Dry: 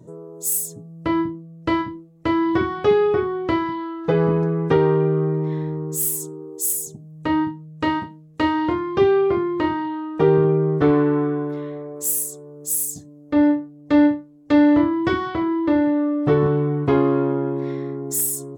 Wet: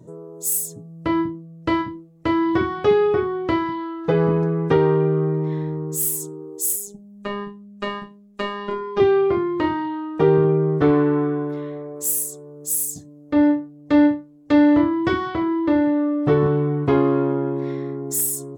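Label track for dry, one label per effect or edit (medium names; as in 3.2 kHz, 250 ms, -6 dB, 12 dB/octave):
6.760000	9.000000	robot voice 203 Hz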